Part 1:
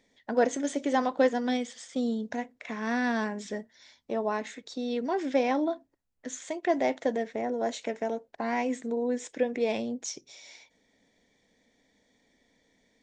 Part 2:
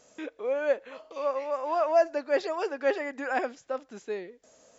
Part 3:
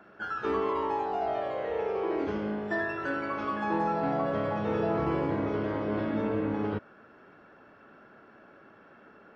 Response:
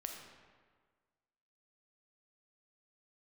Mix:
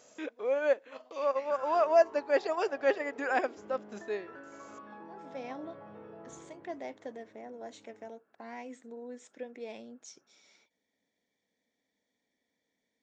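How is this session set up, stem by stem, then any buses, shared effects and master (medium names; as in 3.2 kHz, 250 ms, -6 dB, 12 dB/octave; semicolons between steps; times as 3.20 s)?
-14.0 dB, 0.00 s, no send, auto duck -23 dB, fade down 0.20 s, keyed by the second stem
+1.0 dB, 0.00 s, no send, transient shaper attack -3 dB, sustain -8 dB
6.32 s -8 dB -> 6.96 s -20 dB, 1.30 s, no send, low-pass 2 kHz 6 dB/octave; compression 10:1, threshold -37 dBFS, peak gain reduction 12.5 dB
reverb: none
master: high-pass 170 Hz 6 dB/octave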